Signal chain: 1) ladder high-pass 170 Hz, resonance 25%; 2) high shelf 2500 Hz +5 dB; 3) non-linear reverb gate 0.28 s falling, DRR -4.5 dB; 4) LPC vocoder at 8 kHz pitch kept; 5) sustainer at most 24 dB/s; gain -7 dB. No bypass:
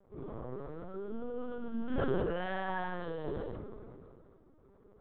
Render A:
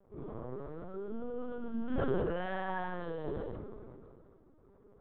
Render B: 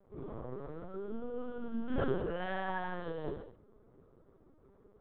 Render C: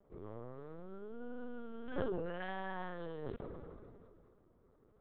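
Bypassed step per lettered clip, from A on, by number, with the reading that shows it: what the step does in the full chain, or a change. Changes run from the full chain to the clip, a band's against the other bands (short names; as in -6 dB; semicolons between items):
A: 2, 4 kHz band -3.0 dB; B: 5, momentary loudness spread change -5 LU; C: 3, loudness change -6.5 LU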